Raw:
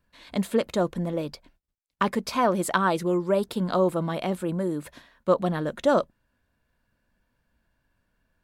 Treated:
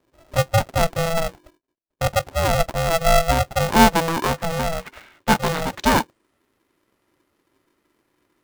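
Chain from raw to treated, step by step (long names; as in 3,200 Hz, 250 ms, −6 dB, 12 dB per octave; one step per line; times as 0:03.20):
low-pass filter sweep 340 Hz → 12,000 Hz, 0:03.38–0:06.42
ring modulator with a square carrier 330 Hz
level +3.5 dB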